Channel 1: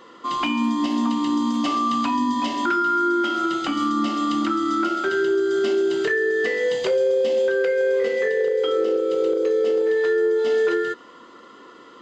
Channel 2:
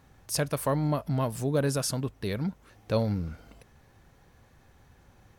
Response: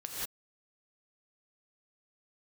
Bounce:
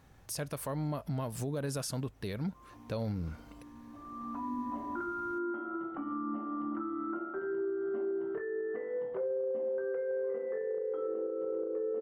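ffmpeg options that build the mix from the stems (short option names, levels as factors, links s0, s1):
-filter_complex "[0:a]lowpass=f=1300:w=0.5412,lowpass=f=1300:w=1.3066,adelay=2300,volume=0.211,afade=t=in:st=4:d=0.3:silence=0.473151[s0];[1:a]volume=0.794,asplit=2[s1][s2];[s2]apad=whole_len=631231[s3];[s0][s3]sidechaincompress=threshold=0.00794:ratio=8:attack=16:release=1250[s4];[s4][s1]amix=inputs=2:normalize=0,alimiter=level_in=1.5:limit=0.0631:level=0:latency=1:release=164,volume=0.668"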